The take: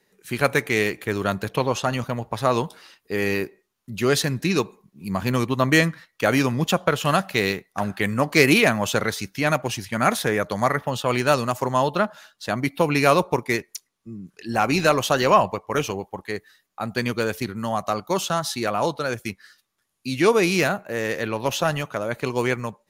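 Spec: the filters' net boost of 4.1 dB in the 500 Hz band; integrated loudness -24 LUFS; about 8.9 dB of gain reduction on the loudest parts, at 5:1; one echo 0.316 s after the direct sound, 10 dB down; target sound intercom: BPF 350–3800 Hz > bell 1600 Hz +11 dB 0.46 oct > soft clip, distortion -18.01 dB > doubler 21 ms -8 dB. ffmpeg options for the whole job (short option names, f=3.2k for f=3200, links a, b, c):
-filter_complex "[0:a]equalizer=f=500:t=o:g=6,acompressor=threshold=-19dB:ratio=5,highpass=350,lowpass=3.8k,equalizer=f=1.6k:t=o:w=0.46:g=11,aecho=1:1:316:0.316,asoftclip=threshold=-12.5dB,asplit=2[a][b];[b]adelay=21,volume=-8dB[c];[a][c]amix=inputs=2:normalize=0,volume=1dB"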